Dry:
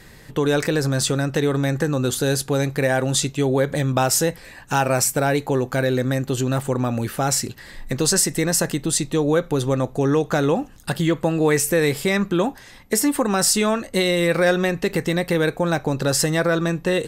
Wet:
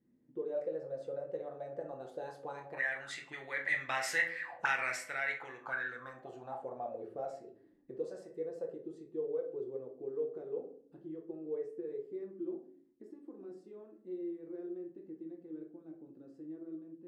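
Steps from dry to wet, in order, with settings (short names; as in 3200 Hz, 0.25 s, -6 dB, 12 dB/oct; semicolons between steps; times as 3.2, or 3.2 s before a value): Doppler pass-by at 4.29, 7 m/s, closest 3.4 m; de-hum 56.09 Hz, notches 33; auto-wah 250–2000 Hz, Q 8.6, up, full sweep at -25.5 dBFS; on a send: reverb, pre-delay 6 ms, DRR 2 dB; on the sum: gain +7.5 dB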